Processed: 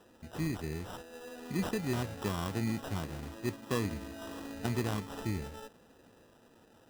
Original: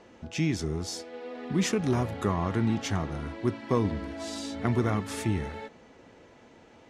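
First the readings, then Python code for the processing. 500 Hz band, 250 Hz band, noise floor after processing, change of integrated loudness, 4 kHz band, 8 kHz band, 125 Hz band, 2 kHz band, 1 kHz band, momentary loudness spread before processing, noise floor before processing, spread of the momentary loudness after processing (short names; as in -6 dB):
-7.5 dB, -7.0 dB, -62 dBFS, -7.0 dB, -6.5 dB, -8.0 dB, -7.0 dB, -5.0 dB, -7.0 dB, 11 LU, -55 dBFS, 12 LU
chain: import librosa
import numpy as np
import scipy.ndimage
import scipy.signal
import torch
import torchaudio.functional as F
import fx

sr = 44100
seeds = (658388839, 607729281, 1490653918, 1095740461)

y = fx.sample_hold(x, sr, seeds[0], rate_hz=2200.0, jitter_pct=0)
y = y * 10.0 ** (-7.0 / 20.0)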